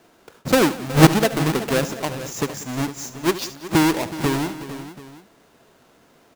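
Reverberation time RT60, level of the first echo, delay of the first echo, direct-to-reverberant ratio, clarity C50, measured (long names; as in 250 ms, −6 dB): no reverb audible, −15.0 dB, 75 ms, no reverb audible, no reverb audible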